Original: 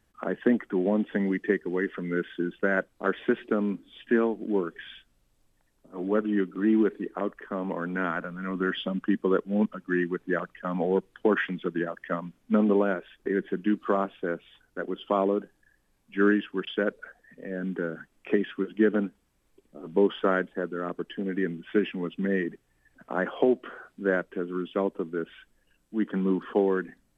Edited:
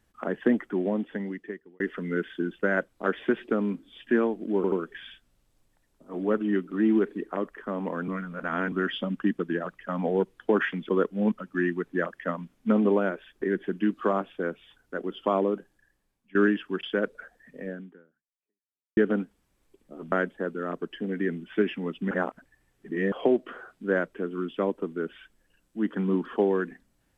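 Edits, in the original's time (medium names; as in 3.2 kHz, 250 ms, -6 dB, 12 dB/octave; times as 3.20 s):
0.62–1.80 s: fade out
4.56 s: stutter 0.08 s, 3 plays
7.92–8.56 s: reverse
9.23–10.41 s: swap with 11.65–11.91 s
15.17–16.19 s: fade out equal-power, to -18.5 dB
17.52–18.81 s: fade out exponential
19.96–20.29 s: delete
22.28–23.29 s: reverse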